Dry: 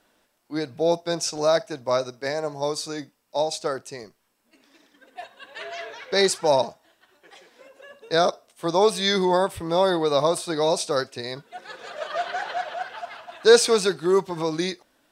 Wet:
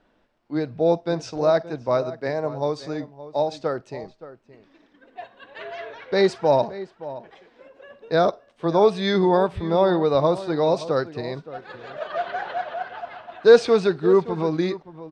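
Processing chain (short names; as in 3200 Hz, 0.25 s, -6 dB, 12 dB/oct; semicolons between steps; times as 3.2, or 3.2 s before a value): LPF 4000 Hz 12 dB/oct; tilt -2 dB/oct; outdoor echo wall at 98 m, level -15 dB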